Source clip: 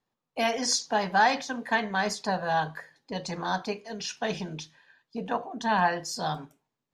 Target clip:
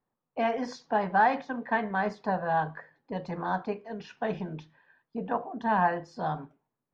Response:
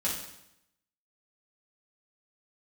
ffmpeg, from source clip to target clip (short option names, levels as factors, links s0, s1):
-af "lowpass=1600"